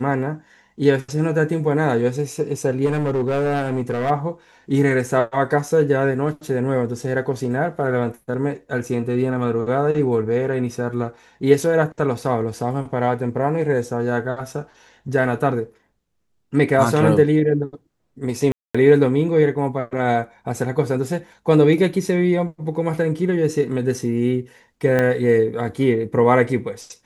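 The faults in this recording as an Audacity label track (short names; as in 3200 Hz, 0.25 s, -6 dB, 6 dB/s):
2.850000	4.110000	clipped -16.5 dBFS
18.520000	18.750000	gap 0.225 s
24.990000	24.990000	pop -8 dBFS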